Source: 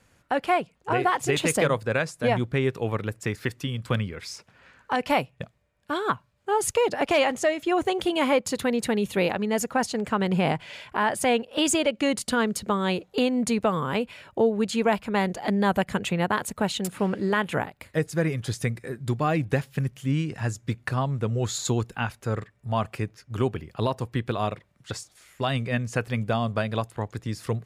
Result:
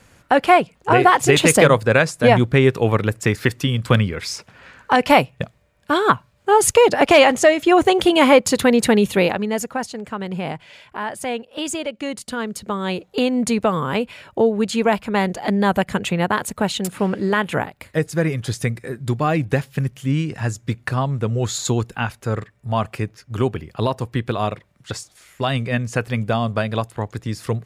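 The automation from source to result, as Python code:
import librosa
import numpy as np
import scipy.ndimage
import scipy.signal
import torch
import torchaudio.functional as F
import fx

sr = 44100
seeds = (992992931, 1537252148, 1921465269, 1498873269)

y = fx.gain(x, sr, db=fx.line((8.97, 10.0), (9.99, -3.0), (12.29, -3.0), (13.34, 5.0)))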